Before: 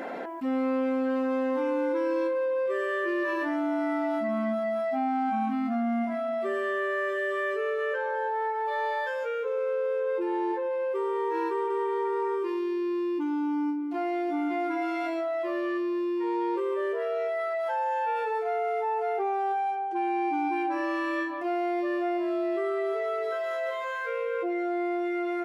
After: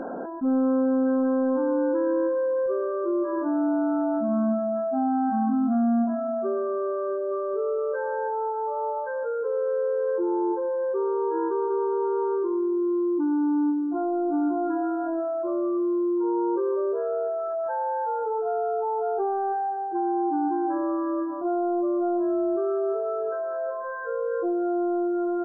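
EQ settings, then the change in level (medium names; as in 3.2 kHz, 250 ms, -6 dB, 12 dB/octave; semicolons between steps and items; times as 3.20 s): brick-wall FIR low-pass 1.7 kHz; tilt EQ -3 dB/octave; 0.0 dB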